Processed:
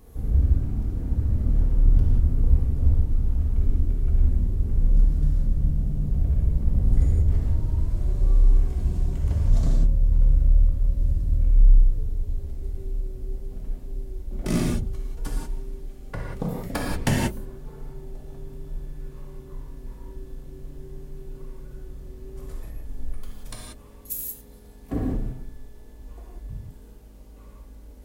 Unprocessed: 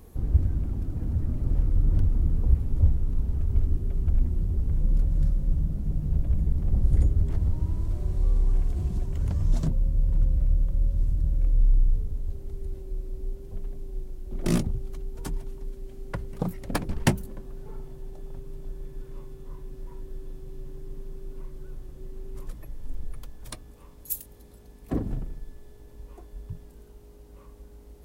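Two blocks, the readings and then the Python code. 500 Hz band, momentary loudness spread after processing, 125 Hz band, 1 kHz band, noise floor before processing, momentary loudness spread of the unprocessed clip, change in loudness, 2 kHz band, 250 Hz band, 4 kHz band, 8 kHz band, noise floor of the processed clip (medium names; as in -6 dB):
+2.0 dB, 20 LU, +3.0 dB, +2.5 dB, -48 dBFS, 19 LU, +3.0 dB, +3.0 dB, +2.0 dB, +2.5 dB, +2.5 dB, -45 dBFS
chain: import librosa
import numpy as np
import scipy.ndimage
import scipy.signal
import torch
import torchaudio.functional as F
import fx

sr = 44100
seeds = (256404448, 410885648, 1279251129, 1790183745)

y = fx.rev_gated(x, sr, seeds[0], gate_ms=210, shape='flat', drr_db=-3.5)
y = y * librosa.db_to_amplitude(-2.5)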